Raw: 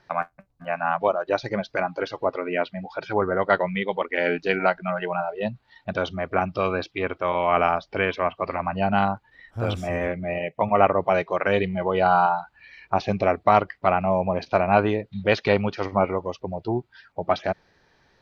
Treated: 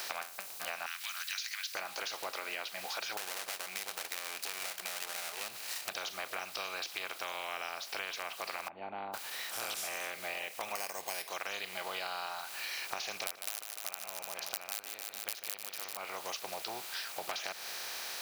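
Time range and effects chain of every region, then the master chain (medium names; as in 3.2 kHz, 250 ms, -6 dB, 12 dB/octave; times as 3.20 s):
0.86–1.75 s: steep high-pass 1.6 kHz 48 dB/octave + tilt EQ +2 dB/octave
3.17–5.89 s: comb filter that takes the minimum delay 0.43 ms + compression 4:1, threshold -33 dBFS
8.68–9.14 s: cascade formant filter u + tilt EQ -1.5 dB/octave
10.75–11.29 s: Butterworth band-stop 1.3 kHz, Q 2.9 + decimation joined by straight lines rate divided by 6×
13.13–15.97 s: integer overflow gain 7.5 dB + feedback delay 150 ms, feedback 57%, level -17.5 dB
whole clip: spectral levelling over time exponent 0.4; differentiator; compression, threshold -37 dBFS; trim +1.5 dB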